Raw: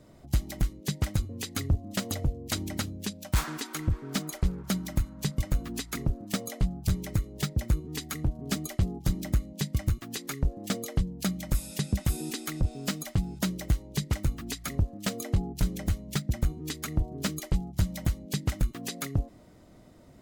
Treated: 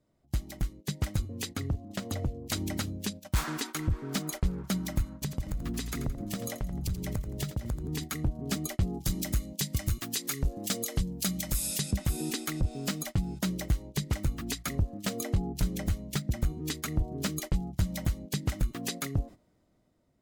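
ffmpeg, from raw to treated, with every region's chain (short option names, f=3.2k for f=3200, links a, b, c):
-filter_complex "[0:a]asettb=1/sr,asplit=3[a][b][c];[a]atrim=end=1.514[d];[b]atrim=start=1.51:end=2.41,asetpts=PTS-STARTPTS,afade=t=in:d=0.004:c=qsin,afade=t=out:st=0.896:d=0.004:c=qsin,highshelf=f=6.6k:g=-6,acrossover=split=100|1700[e][f][g];[e]acompressor=threshold=-34dB:ratio=4[h];[f]acompressor=threshold=-33dB:ratio=4[i];[g]acompressor=threshold=-41dB:ratio=4[j];[h][i][j]amix=inputs=3:normalize=0[k];[c]atrim=start=2.406[l];[d][k]acrossfade=d=0.004:c1=hsin:c2=qsin[m];[m][l]acrossfade=d=0.004:c1=qsin:c2=hsin,asettb=1/sr,asplit=3[n][o][p];[n]atrim=end=5.214[q];[o]atrim=start=5.21:end=8.04,asetpts=PTS-STARTPTS,afade=t=in:d=0.004:c=qsin,afade=t=out:st=2.826:d=0.004:c=qsin,lowshelf=f=210:g=8,acompressor=threshold=-31dB:ratio=5:attack=3.2:release=140:knee=1:detection=peak,aecho=1:1:85|170|255|340:0.266|0.109|0.0447|0.0183,atrim=end_sample=124803[r];[p]atrim=start=8.036[s];[q][r]acrossfade=d=0.004:c1=hsin:c2=qsin[t];[t][s]acrossfade=d=0.004:c1=qsin:c2=hsin,asettb=1/sr,asplit=3[u][v][w];[u]atrim=end=8.934[x];[v]atrim=start=8.93:end=11.91,asetpts=PTS-STARTPTS,afade=t=in:d=0.004:c=qsin,afade=t=out:st=2.976:d=0.004:c=qsin,highshelf=f=2.8k:g=11,volume=14.5dB,asoftclip=hard,volume=-14.5dB[y];[w]atrim=start=11.906[z];[x][y]acrossfade=d=0.004:c1=hsin:c2=qsin[aa];[aa][z]acrossfade=d=0.004:c1=qsin:c2=hsin,agate=range=-14dB:threshold=-40dB:ratio=16:detection=peak,dynaudnorm=f=360:g=7:m=7dB,alimiter=limit=-14.5dB:level=0:latency=1:release=107,volume=-5dB"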